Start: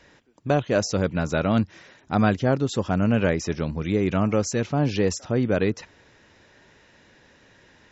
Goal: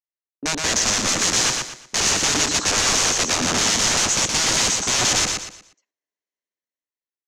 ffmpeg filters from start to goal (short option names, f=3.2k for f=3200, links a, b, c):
-filter_complex "[0:a]highpass=f=230:w=0.5412,highpass=f=230:w=1.3066,afwtdn=0.02,agate=range=-43dB:threshold=-49dB:ratio=16:detection=peak,acontrast=28,alimiter=limit=-15dB:level=0:latency=1:release=33,dynaudnorm=f=210:g=9:m=11.5dB,aeval=exprs='(mod(8.41*val(0)+1,2)-1)/8.41':c=same,lowpass=f=6k:t=q:w=3.7,asplit=2[a][b];[b]aecho=0:1:129|258|387|516:0.631|0.196|0.0606|0.0188[c];[a][c]amix=inputs=2:normalize=0,asetrate=48000,aresample=44100"